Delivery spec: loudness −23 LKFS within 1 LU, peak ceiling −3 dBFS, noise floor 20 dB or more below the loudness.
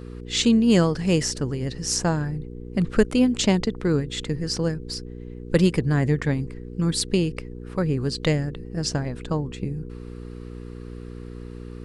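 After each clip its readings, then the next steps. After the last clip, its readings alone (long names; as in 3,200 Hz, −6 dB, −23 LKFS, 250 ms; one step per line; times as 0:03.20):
mains hum 60 Hz; hum harmonics up to 480 Hz; level of the hum −36 dBFS; integrated loudness −24.0 LKFS; sample peak −5.0 dBFS; target loudness −23.0 LKFS
→ hum removal 60 Hz, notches 8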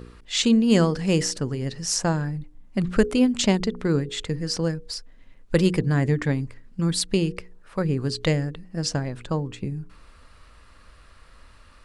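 mains hum none found; integrated loudness −24.0 LKFS; sample peak −5.5 dBFS; target loudness −23.0 LKFS
→ level +1 dB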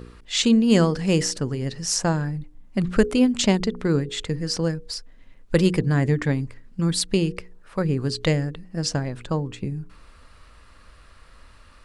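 integrated loudness −23.0 LKFS; sample peak −4.5 dBFS; background noise floor −50 dBFS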